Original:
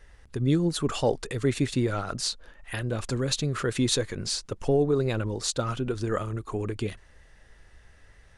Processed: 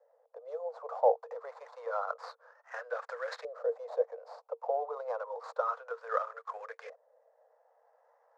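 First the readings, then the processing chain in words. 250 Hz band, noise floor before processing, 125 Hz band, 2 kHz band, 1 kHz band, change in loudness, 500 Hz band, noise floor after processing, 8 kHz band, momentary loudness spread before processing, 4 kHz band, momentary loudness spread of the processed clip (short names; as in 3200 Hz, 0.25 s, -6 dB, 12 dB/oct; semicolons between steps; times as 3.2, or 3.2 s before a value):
under -40 dB, -56 dBFS, under -40 dB, -7.5 dB, +1.0 dB, -8.0 dB, -5.0 dB, -71 dBFS, under -30 dB, 8 LU, -26.0 dB, 16 LU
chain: median filter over 15 samples; Chebyshev high-pass 460 Hz, order 10; resonant high shelf 4000 Hz +13.5 dB, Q 1.5; LFO low-pass saw up 0.29 Hz 580–1800 Hz; gain -2.5 dB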